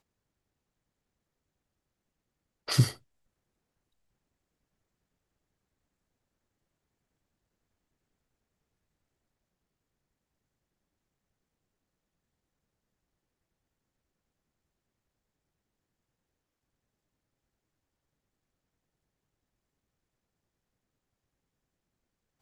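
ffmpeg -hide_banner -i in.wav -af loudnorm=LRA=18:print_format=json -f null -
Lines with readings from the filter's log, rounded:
"input_i" : "-28.2",
"input_tp" : "-10.8",
"input_lra" : "0.0",
"input_thresh" : "-39.7",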